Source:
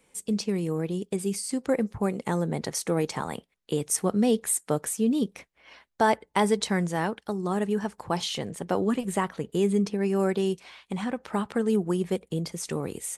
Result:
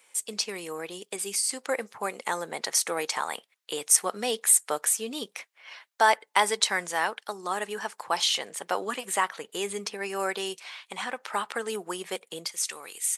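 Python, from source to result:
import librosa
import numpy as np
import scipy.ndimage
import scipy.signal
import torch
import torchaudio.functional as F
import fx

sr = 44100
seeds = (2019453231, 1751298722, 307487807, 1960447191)

y = fx.bessel_highpass(x, sr, hz=fx.steps((0.0, 1100.0), (12.45, 2100.0)), order=2)
y = y * librosa.db_to_amplitude(7.0)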